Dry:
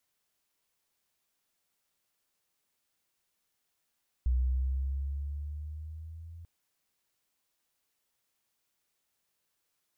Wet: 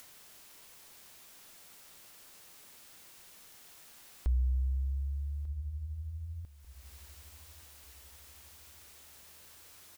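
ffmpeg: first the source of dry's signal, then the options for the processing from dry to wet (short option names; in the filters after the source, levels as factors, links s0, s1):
-f lavfi -i "aevalsrc='pow(10,(-23.5-20.5*t/2.19)/20)*sin(2*PI*61.7*2.19/(5.5*log(2)/12)*(exp(5.5*log(2)/12*t/2.19)-1))':d=2.19:s=44100"
-af "acompressor=mode=upward:threshold=0.0178:ratio=2.5,aecho=1:1:1193|2386|3579:0.112|0.0494|0.0217"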